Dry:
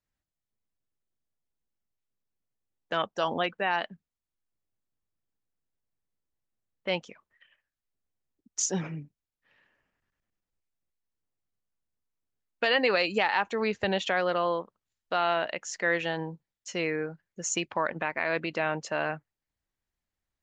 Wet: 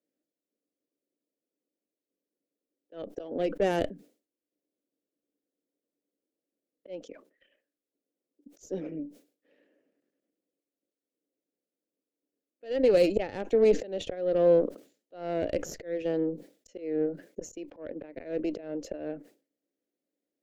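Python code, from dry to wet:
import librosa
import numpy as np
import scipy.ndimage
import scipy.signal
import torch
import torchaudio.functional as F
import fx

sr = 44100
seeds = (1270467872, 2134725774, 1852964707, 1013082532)

y = scipy.signal.sosfilt(scipy.signal.butter(4, 230.0, 'highpass', fs=sr, output='sos'), x)
y = fx.peak_eq(y, sr, hz=290.0, db=10.5, octaves=0.27)
y = fx.auto_swell(y, sr, attack_ms=573.0)
y = fx.cheby_harmonics(y, sr, harmonics=(6,), levels_db=(-17,), full_scale_db=-16.0)
y = fx.low_shelf_res(y, sr, hz=720.0, db=11.0, q=3.0)
y = fx.sustainer(y, sr, db_per_s=150.0)
y = F.gain(torch.from_numpy(y), -6.0).numpy()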